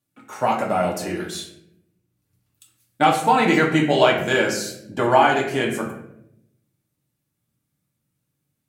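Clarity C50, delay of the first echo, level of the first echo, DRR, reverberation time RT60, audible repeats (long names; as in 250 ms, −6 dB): 6.0 dB, no echo audible, no echo audible, −1.5 dB, 0.75 s, no echo audible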